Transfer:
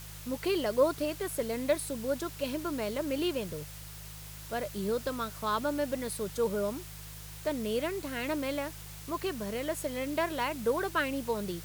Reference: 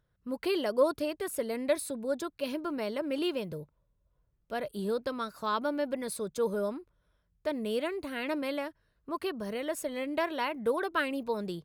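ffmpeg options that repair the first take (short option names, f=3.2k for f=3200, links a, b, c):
-af "bandreject=f=51.9:t=h:w=4,bandreject=f=103.8:t=h:w=4,bandreject=f=155.7:t=h:w=4,afftdn=nr=28:nf=-45"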